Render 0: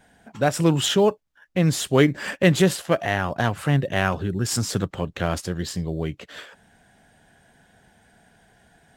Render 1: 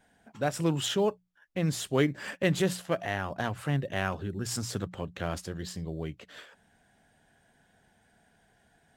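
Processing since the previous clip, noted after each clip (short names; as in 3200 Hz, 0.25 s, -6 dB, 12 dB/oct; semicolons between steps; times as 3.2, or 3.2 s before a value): notches 60/120/180 Hz; gain -8.5 dB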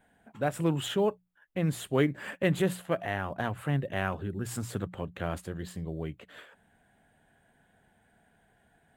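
bell 5400 Hz -14 dB 0.78 oct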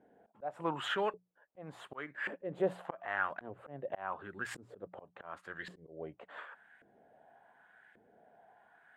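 LFO band-pass saw up 0.88 Hz 360–1900 Hz; auto swell 0.457 s; gain +10.5 dB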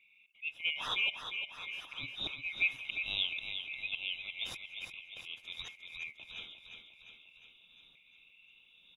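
band-swap scrambler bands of 2000 Hz; on a send: feedback echo 0.353 s, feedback 59%, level -7.5 dB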